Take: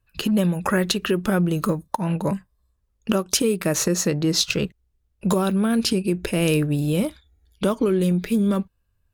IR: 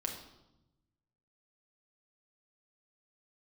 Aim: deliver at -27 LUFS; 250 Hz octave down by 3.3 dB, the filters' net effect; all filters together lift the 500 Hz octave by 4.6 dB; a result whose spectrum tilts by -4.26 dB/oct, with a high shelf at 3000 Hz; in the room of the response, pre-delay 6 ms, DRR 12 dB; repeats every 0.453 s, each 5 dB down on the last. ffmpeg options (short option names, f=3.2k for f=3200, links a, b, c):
-filter_complex "[0:a]equalizer=f=250:t=o:g=-7.5,equalizer=f=500:t=o:g=8,highshelf=f=3k:g=3,aecho=1:1:453|906|1359|1812|2265|2718|3171:0.562|0.315|0.176|0.0988|0.0553|0.031|0.0173,asplit=2[a][b];[1:a]atrim=start_sample=2205,adelay=6[c];[b][c]afir=irnorm=-1:irlink=0,volume=-13dB[d];[a][d]amix=inputs=2:normalize=0,volume=-7dB"